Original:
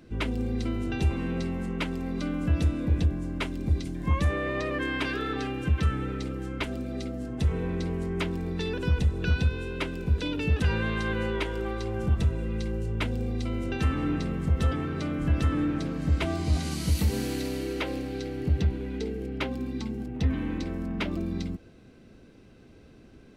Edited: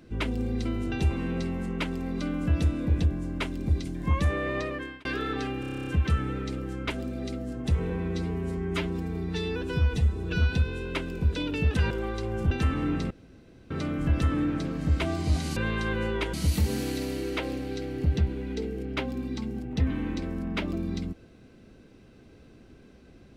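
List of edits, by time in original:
4.58–5.05 s: fade out
5.60 s: stutter 0.03 s, 10 plays
7.63–9.38 s: stretch 1.5×
10.76–11.53 s: move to 16.77 s
12.13–13.71 s: delete
14.31–14.91 s: room tone

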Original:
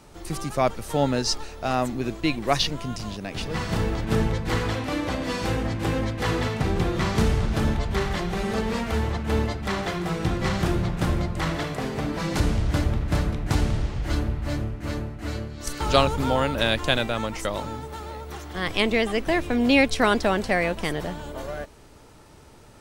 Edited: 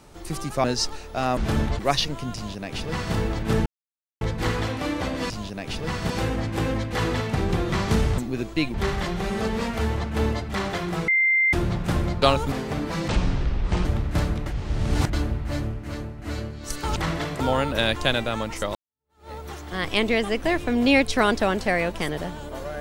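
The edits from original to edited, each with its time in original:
0.64–1.12 s: delete
1.85–2.41 s: swap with 7.45–7.87 s
2.97–3.77 s: copy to 5.37 s
4.28 s: insert silence 0.55 s
10.21–10.66 s: bleep 2.09 kHz -16.5 dBFS
11.35–11.79 s: swap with 15.93–16.23 s
12.35–12.82 s: speed 61%
13.43–14.10 s: reverse
14.84–15.15 s: gain -3 dB
17.58–18.14 s: fade in exponential

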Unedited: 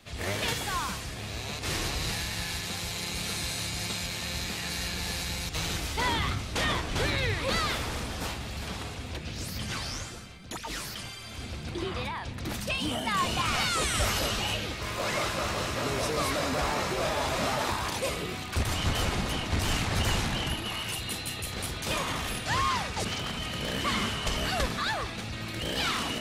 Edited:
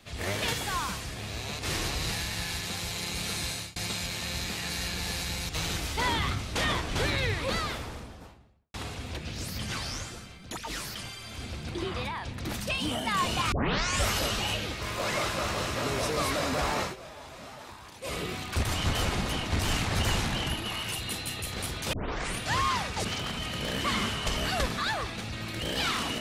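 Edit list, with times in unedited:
3.43–3.76 s: fade out equal-power
7.21–8.74 s: studio fade out
13.52 s: tape start 0.51 s
16.82–18.15 s: dip -16 dB, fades 0.14 s
21.93 s: tape start 0.47 s

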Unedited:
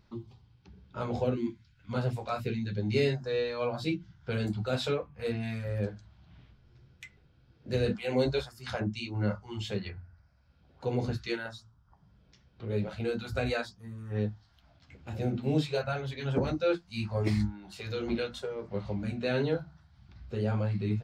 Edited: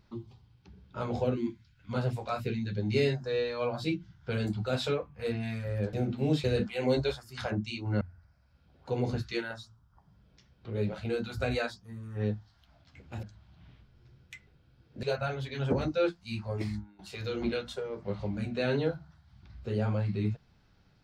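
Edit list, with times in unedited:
5.93–7.73 s: swap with 15.18–15.69 s
9.30–9.96 s: delete
16.76–17.65 s: fade out, to -14.5 dB

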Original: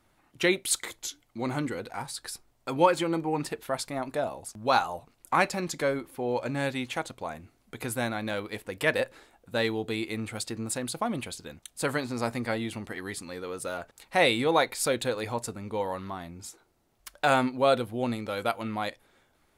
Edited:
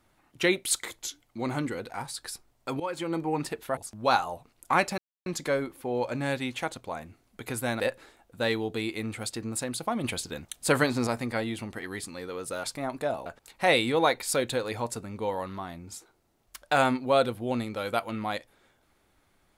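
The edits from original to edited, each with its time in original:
2.80–3.23 s: fade in, from -18 dB
3.77–4.39 s: move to 13.78 s
5.60 s: insert silence 0.28 s
8.14–8.94 s: delete
11.18–12.21 s: gain +5.5 dB

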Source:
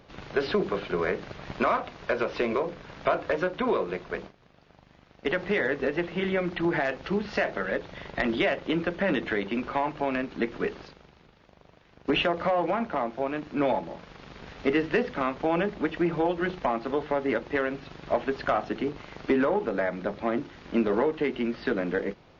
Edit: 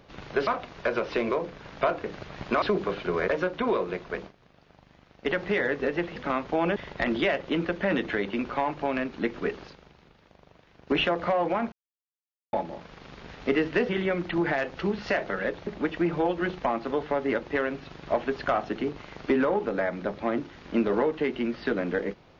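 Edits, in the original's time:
0.47–1.13 s: swap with 1.71–3.28 s
6.16–7.94 s: swap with 15.07–15.67 s
12.90–13.71 s: mute

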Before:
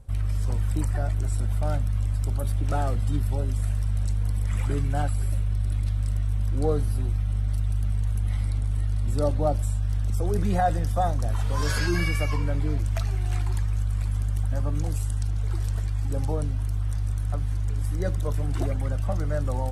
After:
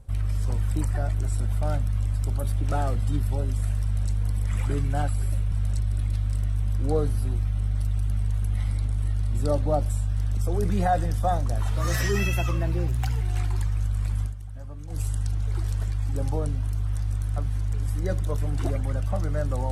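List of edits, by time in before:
3.84–4.11 s: copy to 5.52 s
11.50–13.17 s: speed 116%
14.18–14.97 s: dip -12.5 dB, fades 0.13 s

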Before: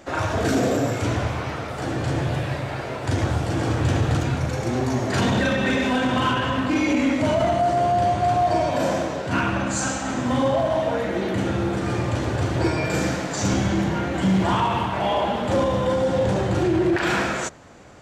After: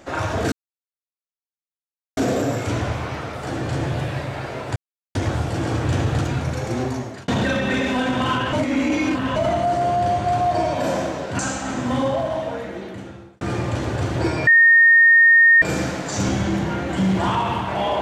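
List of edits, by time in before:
0.52 s: insert silence 1.65 s
3.11 s: insert silence 0.39 s
4.77–5.24 s: fade out linear
6.49–7.32 s: reverse
9.35–9.79 s: delete
10.35–11.81 s: fade out
12.87 s: add tone 1.84 kHz -8.5 dBFS 1.15 s

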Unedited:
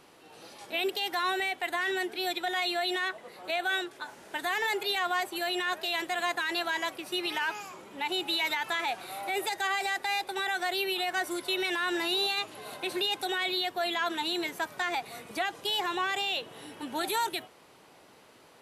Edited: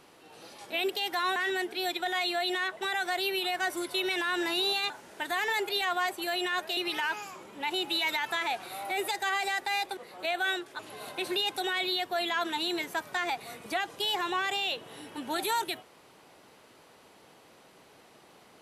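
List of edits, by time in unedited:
1.36–1.77 s: delete
3.22–4.04 s: swap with 10.35–12.44 s
5.91–7.15 s: delete

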